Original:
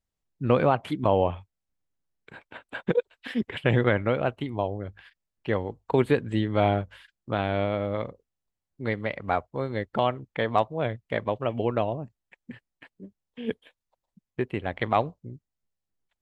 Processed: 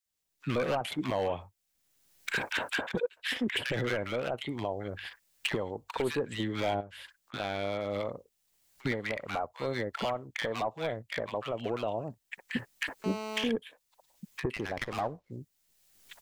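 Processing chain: recorder AGC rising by 28 dB/s; tilt EQ +2.5 dB/octave; 6.74–7.34 s: compression 12:1, threshold -36 dBFS, peak gain reduction 17 dB; overload inside the chain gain 19 dB; bands offset in time highs, lows 60 ms, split 1.2 kHz; 13.04–13.44 s: mobile phone buzz -34 dBFS; 14.56–15.32 s: sliding maximum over 5 samples; trim -4 dB

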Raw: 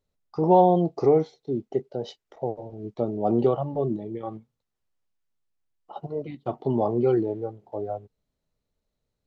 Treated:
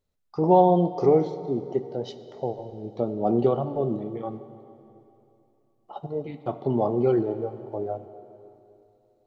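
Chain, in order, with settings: plate-style reverb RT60 2.9 s, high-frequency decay 0.95×, DRR 11 dB

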